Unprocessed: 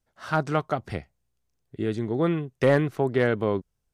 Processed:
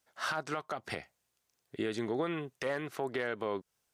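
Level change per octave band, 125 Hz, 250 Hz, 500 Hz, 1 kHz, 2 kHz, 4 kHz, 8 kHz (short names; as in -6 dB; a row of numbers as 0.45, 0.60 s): -18.0 dB, -11.5 dB, -11.0 dB, -8.0 dB, -6.0 dB, -2.0 dB, n/a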